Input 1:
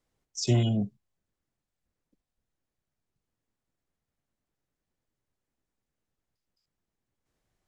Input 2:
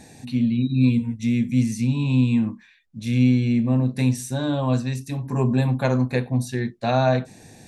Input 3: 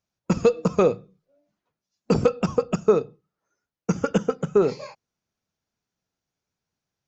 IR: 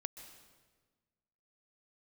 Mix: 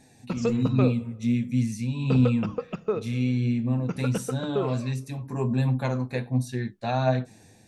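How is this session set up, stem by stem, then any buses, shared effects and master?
−13.0 dB, 0.00 s, no send, automatic gain control gain up to 14 dB; gain into a clipping stage and back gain 12 dB; phaser with its sweep stopped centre 1,400 Hz, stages 4
−6.0 dB, 0.00 s, no send, automatic gain control gain up to 5 dB; flanger 1.4 Hz, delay 7.2 ms, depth 3.3 ms, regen +47%
−11.0 dB, 0.00 s, send −9.5 dB, low-pass with resonance 3,100 Hz, resonance Q 1.6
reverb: on, RT60 1.4 s, pre-delay 119 ms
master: no processing

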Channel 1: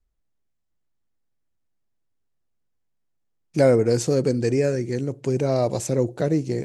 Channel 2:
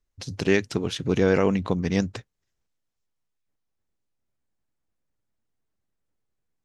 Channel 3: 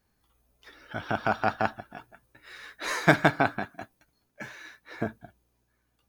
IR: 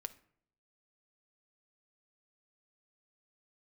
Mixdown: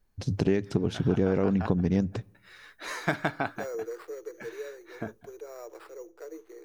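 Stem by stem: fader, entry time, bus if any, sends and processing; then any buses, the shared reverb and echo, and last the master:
−17.0 dB, 0.00 s, send −3 dB, decimation without filtering 7×; Chebyshev high-pass with heavy ripple 320 Hz, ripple 9 dB
−1.5 dB, 0.00 s, send −8.5 dB, tilt shelving filter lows +7 dB, about 910 Hz
−5.5 dB, 0.00 s, no send, no processing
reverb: on, RT60 0.60 s, pre-delay 5 ms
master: downward compressor 4 to 1, threshold −22 dBFS, peak gain reduction 11 dB

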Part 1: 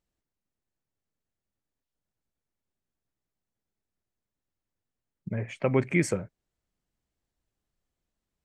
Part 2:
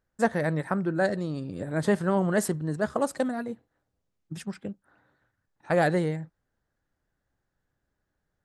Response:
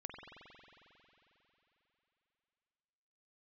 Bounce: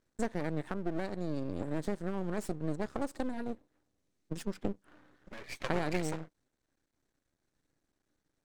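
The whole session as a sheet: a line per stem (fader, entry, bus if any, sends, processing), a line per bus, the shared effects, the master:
+3.0 dB, 0.00 s, no send, lower of the sound and its delayed copy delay 0.49 ms; downward compressor 6 to 1, threshold −32 dBFS, peak gain reduction 12 dB; high-pass filter 400 Hz 12 dB per octave
−0.5 dB, 0.00 s, no send, downward compressor 3 to 1, threshold −37 dBFS, peak gain reduction 14 dB; parametric band 300 Hz +11.5 dB 1 octave; speech leveller 0.5 s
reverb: not used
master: low-pass filter 7,100 Hz 12 dB per octave; high-shelf EQ 5,400 Hz +10.5 dB; half-wave rectification

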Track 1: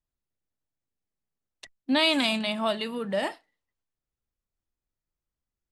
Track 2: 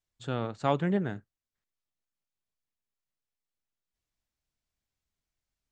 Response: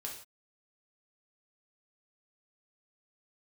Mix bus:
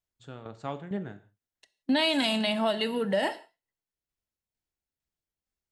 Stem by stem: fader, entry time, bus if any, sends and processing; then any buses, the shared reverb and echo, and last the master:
+2.5 dB, 0.00 s, send −9 dB, notch comb filter 1,200 Hz; noise gate −43 dBFS, range −8 dB; every ending faded ahead of time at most 600 dB per second
−7.0 dB, 0.00 s, send −4.5 dB, shaped tremolo saw down 2.2 Hz, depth 75%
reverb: on, pre-delay 3 ms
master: downward compressor 5 to 1, threshold −22 dBFS, peak gain reduction 7 dB

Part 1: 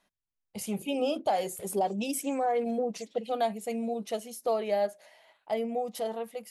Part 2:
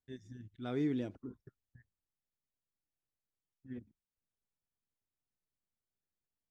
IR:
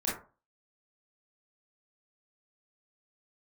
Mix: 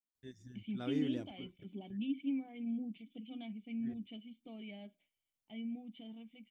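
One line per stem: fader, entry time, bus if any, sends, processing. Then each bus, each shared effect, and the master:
+1.0 dB, 0.00 s, no send, noise gate with hold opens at −44 dBFS; formant resonators in series i; parametric band 470 Hz −12.5 dB 0.76 octaves
−3.5 dB, 0.15 s, no send, high-shelf EQ 4,500 Hz −5 dB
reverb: not used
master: high-shelf EQ 4,400 Hz +11.5 dB

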